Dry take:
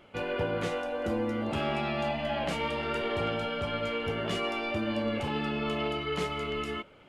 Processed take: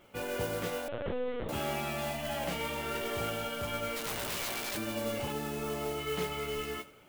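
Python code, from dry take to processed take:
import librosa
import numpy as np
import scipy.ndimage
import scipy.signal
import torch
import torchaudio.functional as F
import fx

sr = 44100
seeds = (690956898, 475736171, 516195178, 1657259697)

y = fx.lowpass(x, sr, hz=1400.0, slope=6, at=(5.32, 5.98))
y = fx.mod_noise(y, sr, seeds[0], snr_db=12)
y = fx.overflow_wrap(y, sr, gain_db=26.5, at=(3.95, 4.76), fade=0.02)
y = fx.doubler(y, sr, ms=16.0, db=-10.0)
y = fx.echo_feedback(y, sr, ms=89, feedback_pct=51, wet_db=-19.5)
y = fx.lpc_vocoder(y, sr, seeds[1], excitation='pitch_kept', order=10, at=(0.88, 1.49))
y = y * 10.0 ** (-4.0 / 20.0)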